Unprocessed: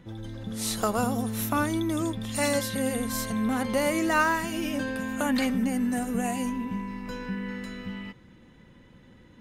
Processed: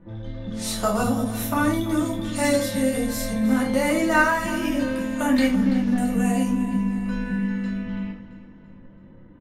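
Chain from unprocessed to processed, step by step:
0:05.48–0:05.98: linear delta modulator 32 kbit/s, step −45.5 dBFS
low-pass that shuts in the quiet parts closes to 1,100 Hz, open at −27 dBFS
repeating echo 335 ms, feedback 48%, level −15 dB
rectangular room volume 250 cubic metres, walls furnished, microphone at 2.6 metres
every ending faded ahead of time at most 150 dB per second
level −2 dB

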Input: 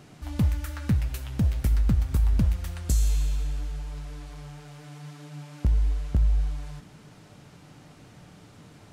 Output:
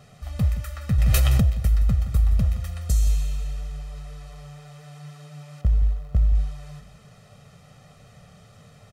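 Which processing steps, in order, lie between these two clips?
0:05.61–0:06.35: running median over 25 samples
comb filter 1.6 ms, depth 98%
single-tap delay 170 ms −13.5 dB
0:00.98–0:01.50: envelope flattener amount 100%
level −3 dB

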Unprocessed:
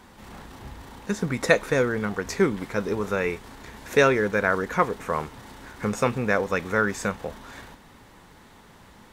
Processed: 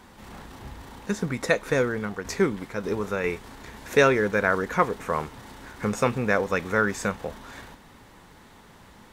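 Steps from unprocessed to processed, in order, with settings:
0:01.07–0:03.24: shaped tremolo saw down 1.7 Hz, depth 45%

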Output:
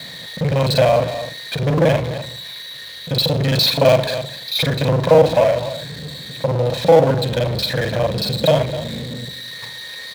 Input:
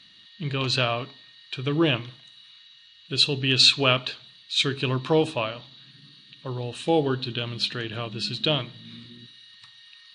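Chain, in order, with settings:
reversed piece by piece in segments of 37 ms
in parallel at −4.5 dB: wrap-around overflow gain 7 dB
on the sum: high-shelf EQ 2,900 Hz −10 dB
phaser with its sweep stopped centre 1,900 Hz, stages 8
single-tap delay 253 ms −22.5 dB
on a send at −16.5 dB: convolution reverb RT60 0.10 s, pre-delay 3 ms
on the sum: power curve on the samples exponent 0.5
high-pass filter 83 Hz
parametric band 510 Hz +13.5 dB 0.61 octaves

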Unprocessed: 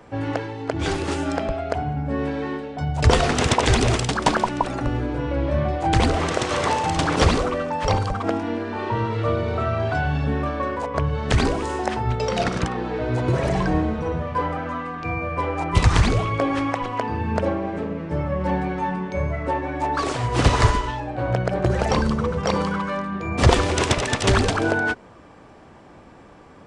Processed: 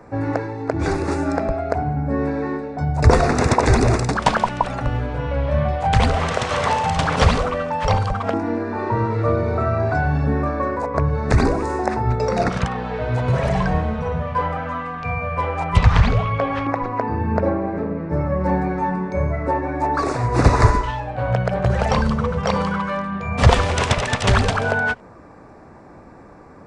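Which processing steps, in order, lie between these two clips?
high-shelf EQ 4,000 Hz −7 dB
auto-filter notch square 0.12 Hz 330–3,100 Hz
0:15.77–0:18.13: high-frequency loss of the air 120 metres
level +3.5 dB

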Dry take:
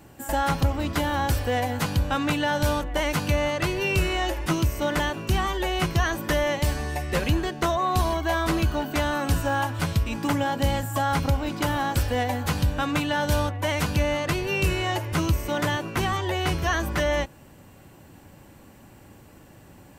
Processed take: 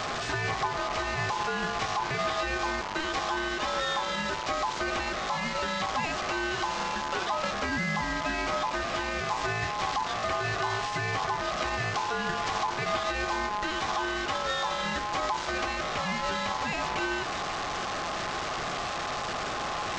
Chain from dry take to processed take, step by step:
linear delta modulator 32 kbit/s, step −24.5 dBFS
tuned comb filter 100 Hz, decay 1.6 s, mix 50%
brickwall limiter −25 dBFS, peak gain reduction 7 dB
high-pass filter 64 Hz
ring modulation 940 Hz
level +7 dB

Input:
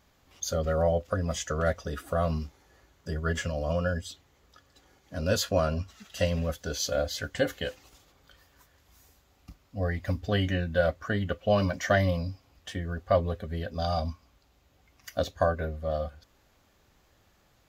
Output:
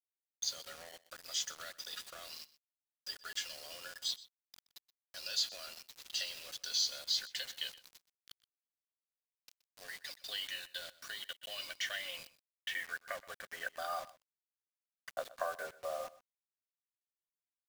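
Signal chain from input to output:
high-pass filter 650 Hz 12 dB per octave
parametric band 980 Hz −8.5 dB 0.94 octaves
automatic gain control gain up to 14 dB
leveller curve on the samples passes 1
downward compressor 5 to 1, threshold −20 dBFS, peak gain reduction 10 dB
band-pass filter sweep 4,300 Hz → 1,000 Hz, 0:11.12–0:14.46
bit reduction 7 bits
on a send: single-tap delay 124 ms −19 dB
on the sum: level −7 dB

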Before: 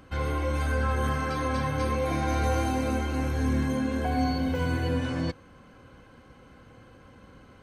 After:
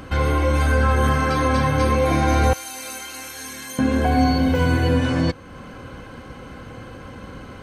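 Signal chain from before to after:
0:02.53–0:03.79: first difference
in parallel at +1.5 dB: downward compressor, threshold −42 dBFS, peak gain reduction 18.5 dB
on the sum: level +7.5 dB

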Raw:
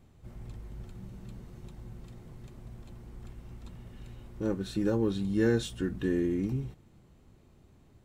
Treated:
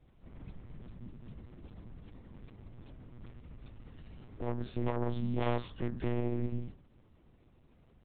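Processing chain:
phase distortion by the signal itself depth 0.75 ms
hum removal 55.72 Hz, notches 33
pitch vibrato 0.77 Hz 30 cents
dynamic equaliser 180 Hz, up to +6 dB, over −52 dBFS, Q 6.1
one-pitch LPC vocoder at 8 kHz 120 Hz
level −3.5 dB

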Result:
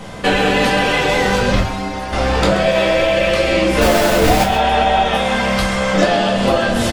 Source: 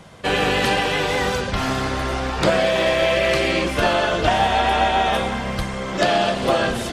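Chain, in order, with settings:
0:03.81–0:04.44: each half-wave held at its own peak
0:05.16–0:05.94: low-shelf EQ 480 Hz −9.5 dB
downward compressor 12 to 1, threshold −25 dBFS, peak gain reduction 16 dB
0:01.59–0:02.13: stiff-string resonator 93 Hz, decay 0.21 s, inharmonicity 0.008
single-tap delay 130 ms −12 dB
convolution reverb RT60 0.35 s, pre-delay 4 ms, DRR −2 dB
level +8.5 dB

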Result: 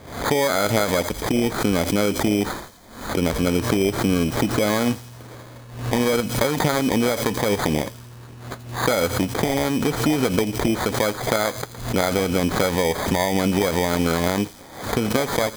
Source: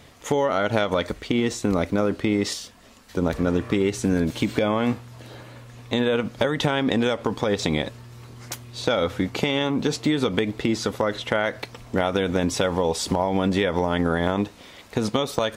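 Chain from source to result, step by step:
decimation without filtering 16×
delay with a high-pass on its return 85 ms, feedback 63%, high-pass 4,300 Hz, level −11 dB
background raised ahead of every attack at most 88 dB per second
level +1.5 dB

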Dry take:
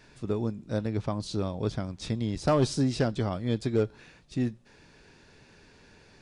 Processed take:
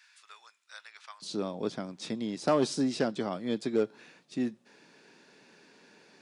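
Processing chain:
high-pass filter 1,300 Hz 24 dB per octave, from 0:01.22 190 Hz
level −1 dB

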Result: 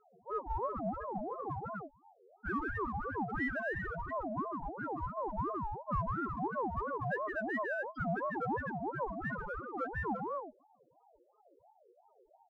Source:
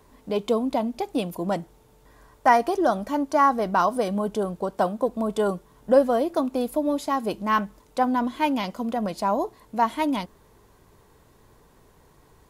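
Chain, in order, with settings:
0:06.56–0:07.39: comb filter 4.6 ms, depth 100%
on a send: loudspeakers that aren't time-aligned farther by 53 metres −6 dB, 85 metres −6 dB
on the sum: soft clipping −23 dBFS, distortion −8 dB
spectral peaks only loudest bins 1
in parallel at −11 dB: asymmetric clip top −42 dBFS
on the sum: ring modulator whose carrier an LFO sweeps 640 Hz, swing 35%, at 2.9 Hz

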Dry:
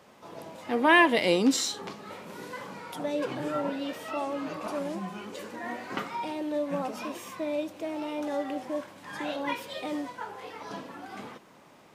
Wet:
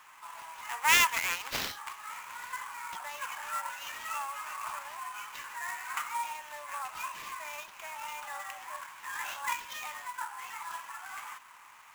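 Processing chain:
phase distortion by the signal itself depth 0.29 ms
Chebyshev high-pass filter 960 Hz, order 4
flat-topped bell 5,800 Hz −8.5 dB
in parallel at +1 dB: downward compressor, threshold −47 dBFS, peak gain reduction 25.5 dB
on the sum: sample-rate reduction 9,300 Hz, jitter 20%

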